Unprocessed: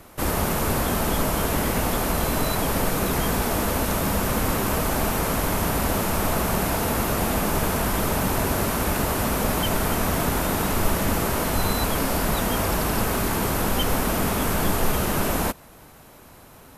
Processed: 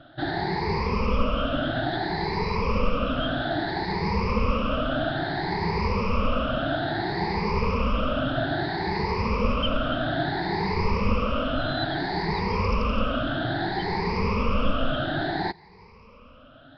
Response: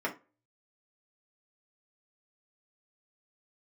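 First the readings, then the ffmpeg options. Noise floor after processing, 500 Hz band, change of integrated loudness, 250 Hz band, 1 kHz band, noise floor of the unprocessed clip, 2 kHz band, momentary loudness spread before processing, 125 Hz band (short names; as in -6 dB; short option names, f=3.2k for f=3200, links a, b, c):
-50 dBFS, -1.5 dB, -3.0 dB, -2.0 dB, -1.5 dB, -48 dBFS, -1.5 dB, 0 LU, -2.5 dB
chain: -af "afftfilt=real='re*pow(10,23/40*sin(2*PI*(0.84*log(max(b,1)*sr/1024/100)/log(2)-(0.6)*(pts-256)/sr)))':imag='im*pow(10,23/40*sin(2*PI*(0.84*log(max(b,1)*sr/1024/100)/log(2)-(0.6)*(pts-256)/sr)))':win_size=1024:overlap=0.75,aresample=11025,aresample=44100,volume=-7dB"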